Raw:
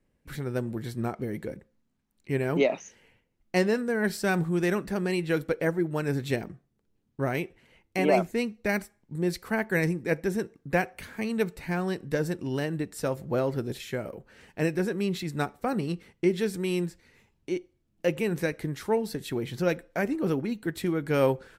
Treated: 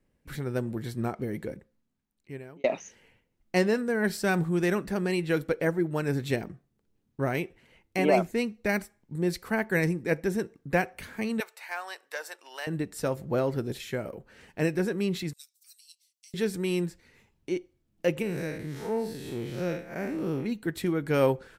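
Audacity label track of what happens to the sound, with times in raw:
1.450000	2.640000	fade out
11.400000	12.670000	HPF 710 Hz 24 dB/oct
15.330000	16.340000	inverse Chebyshev high-pass stop band from 820 Hz, stop band 80 dB
18.220000	20.460000	time blur width 0.15 s

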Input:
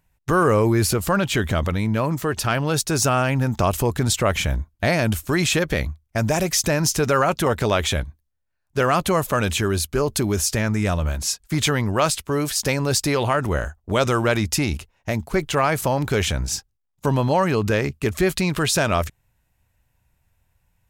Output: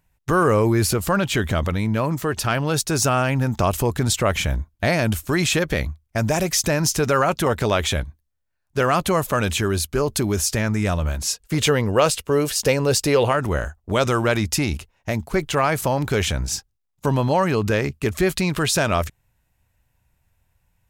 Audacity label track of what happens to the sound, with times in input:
11.300000	13.320000	small resonant body resonances 480/2800 Hz, height 10 dB, ringing for 30 ms

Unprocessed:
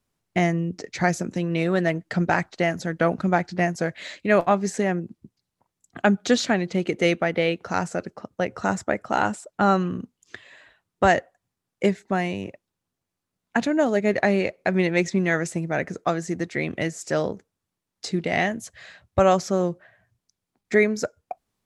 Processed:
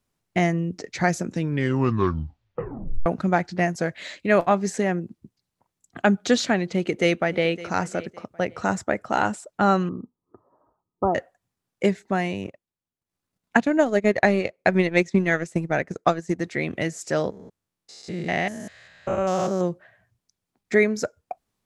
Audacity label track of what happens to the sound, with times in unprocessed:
1.290000	1.290000	tape stop 1.77 s
6.720000	7.500000	echo throw 0.56 s, feedback 25%, level -17.5 dB
9.890000	11.150000	rippled Chebyshev low-pass 1300 Hz, ripple 6 dB
12.440000	16.390000	transient shaper attack +5 dB, sustain -11 dB
17.300000	19.610000	stepped spectrum every 0.2 s

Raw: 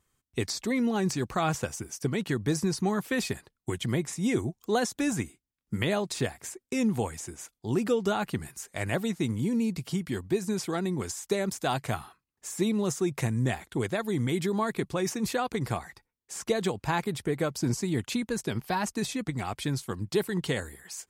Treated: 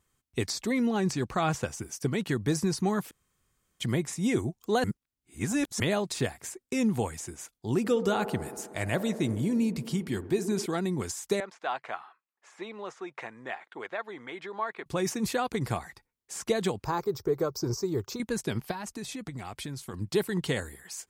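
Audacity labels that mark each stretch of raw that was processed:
0.870000	1.790000	high shelf 9500 Hz -7.5 dB
3.110000	3.800000	room tone
4.840000	5.800000	reverse
7.780000	10.660000	band-limited delay 62 ms, feedback 81%, band-pass 530 Hz, level -11 dB
11.400000	14.860000	BPF 700–2200 Hz
16.840000	18.200000	EQ curve 100 Hz 0 dB, 250 Hz -11 dB, 390 Hz +6 dB, 680 Hz -4 dB, 1200 Hz +2 dB, 1800 Hz -12 dB, 3100 Hz -15 dB, 5500 Hz +4 dB, 10000 Hz -20 dB, 15000 Hz +10 dB
18.710000	19.940000	compressor, threshold -34 dBFS

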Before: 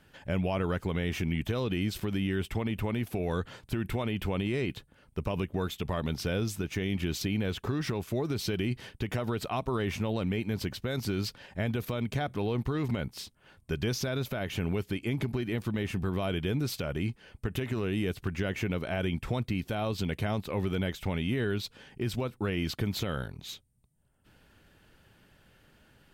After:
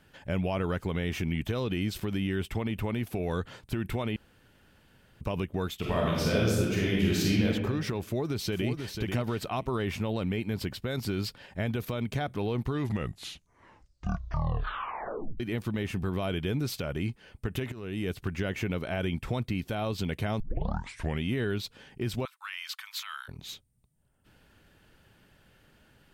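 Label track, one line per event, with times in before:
4.160000	5.210000	room tone
5.780000	7.450000	reverb throw, RT60 1.3 s, DRR -4.5 dB
8.030000	8.940000	echo throw 0.49 s, feedback 10%, level -6 dB
9.820000	11.480000	notch 6100 Hz
12.670000	12.670000	tape stop 2.73 s
17.720000	18.130000	fade in, from -14.5 dB
20.400000	20.400000	tape start 0.82 s
22.250000	23.280000	steep high-pass 1000 Hz 48 dB/oct

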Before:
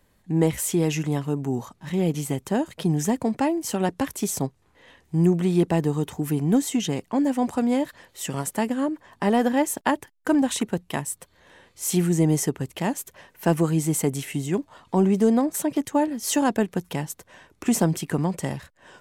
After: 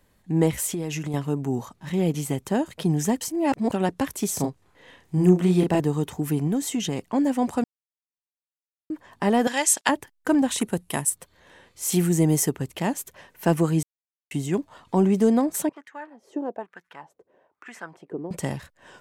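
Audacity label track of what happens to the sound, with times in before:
0.660000	1.140000	compressor, threshold -25 dBFS
3.210000	3.720000	reverse
4.350000	5.800000	doubler 33 ms -4 dB
6.470000	7.090000	compressor 4:1, threshold -21 dBFS
7.640000	8.900000	mute
9.470000	9.890000	weighting filter ITU-R 468
10.580000	11.100000	bell 10000 Hz +14 dB 0.64 oct
11.920000	12.560000	high shelf 11000 Hz +11.5 dB
13.830000	14.310000	mute
15.690000	18.310000	wah 1.1 Hz 380–1800 Hz, Q 3.4

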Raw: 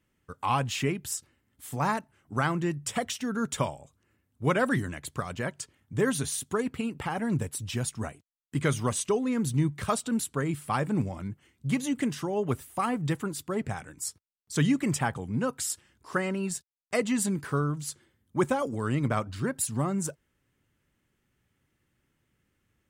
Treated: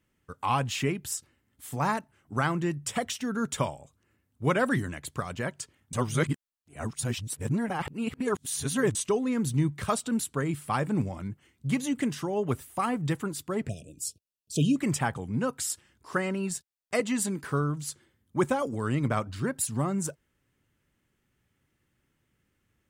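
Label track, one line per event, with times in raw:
5.930000	8.950000	reverse
13.690000	14.760000	brick-wall FIR band-stop 700–2400 Hz
17.000000	17.440000	HPF 200 Hz

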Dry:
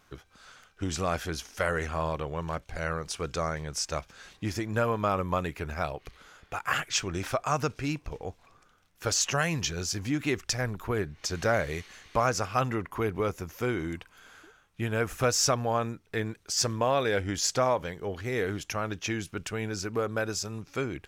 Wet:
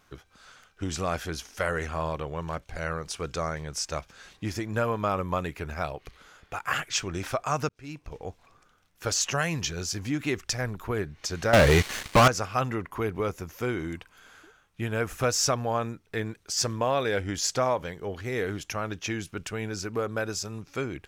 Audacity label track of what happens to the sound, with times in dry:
7.690000	8.270000	fade in
11.530000	12.280000	sample leveller passes 5

